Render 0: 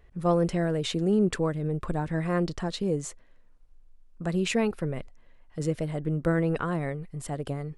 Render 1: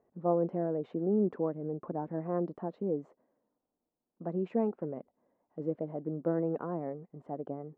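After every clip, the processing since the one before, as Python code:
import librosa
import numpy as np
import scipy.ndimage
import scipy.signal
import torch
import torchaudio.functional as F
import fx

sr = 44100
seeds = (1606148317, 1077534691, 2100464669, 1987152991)

y = scipy.signal.sosfilt(scipy.signal.cheby1(2, 1.0, [230.0, 810.0], 'bandpass', fs=sr, output='sos'), x)
y = y * 10.0 ** (-3.0 / 20.0)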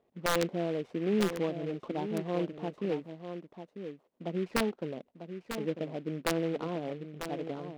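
y = (np.mod(10.0 ** (19.5 / 20.0) * x + 1.0, 2.0) - 1.0) / 10.0 ** (19.5 / 20.0)
y = y + 10.0 ** (-9.0 / 20.0) * np.pad(y, (int(946 * sr / 1000.0), 0))[:len(y)]
y = fx.noise_mod_delay(y, sr, seeds[0], noise_hz=2000.0, depth_ms=0.042)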